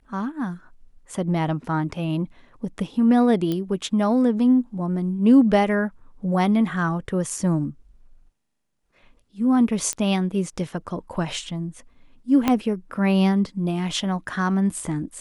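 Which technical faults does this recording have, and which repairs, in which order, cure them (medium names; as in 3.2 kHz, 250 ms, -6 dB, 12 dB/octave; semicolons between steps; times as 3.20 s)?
3.52 s: pop -14 dBFS
9.93 s: pop -12 dBFS
12.48 s: pop -6 dBFS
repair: de-click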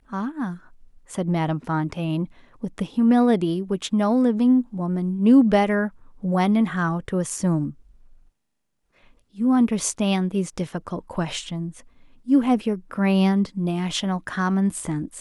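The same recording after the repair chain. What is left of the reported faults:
12.48 s: pop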